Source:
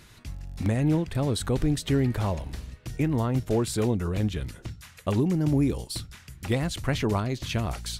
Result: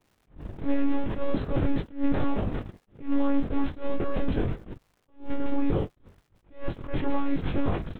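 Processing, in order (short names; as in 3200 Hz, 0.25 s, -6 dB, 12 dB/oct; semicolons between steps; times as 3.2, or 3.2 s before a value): per-bin compression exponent 0.4; air absorption 210 m; in parallel at -10.5 dB: soft clip -24 dBFS, distortion -7 dB; on the sum: monotone LPC vocoder at 8 kHz 280 Hz; chorus 0.37 Hz, delay 20 ms, depth 3.2 ms; gate -25 dBFS, range -41 dB; crackle 430/s -48 dBFS; high shelf 2300 Hz -10 dB; attack slew limiter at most 190 dB/s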